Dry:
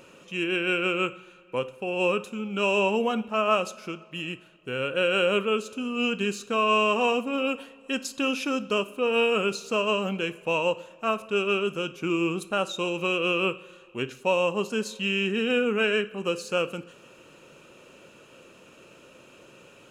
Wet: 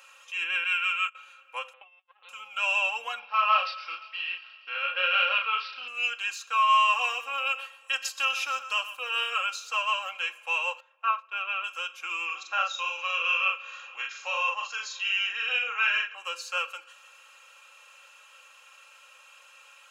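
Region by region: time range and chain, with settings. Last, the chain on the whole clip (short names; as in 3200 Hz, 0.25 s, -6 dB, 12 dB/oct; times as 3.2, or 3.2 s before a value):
0.64–1.15 HPF 1200 Hz + gate -36 dBFS, range -15 dB
1.73–2.29 low shelf 370 Hz +9.5 dB + LPC vocoder at 8 kHz pitch kept + core saturation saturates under 420 Hz
3.19–5.88 doubler 33 ms -4 dB + thin delay 0.118 s, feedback 73%, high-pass 2000 Hz, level -17 dB + careless resampling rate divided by 4×, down none, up filtered
6.61–9.3 high shelf 7700 Hz +4.5 dB + echo 0.124 s -13 dB
10.8–11.64 gate -37 dBFS, range -10 dB + BPF 210–2500 Hz
12.25–16.15 rippled Chebyshev low-pass 7000 Hz, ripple 3 dB + upward compressor, threshold -33 dBFS + doubler 42 ms -3 dB
whole clip: HPF 930 Hz 24 dB/oct; comb 3.7 ms, depth 78%; dynamic EQ 9900 Hz, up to -8 dB, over -54 dBFS, Q 1.3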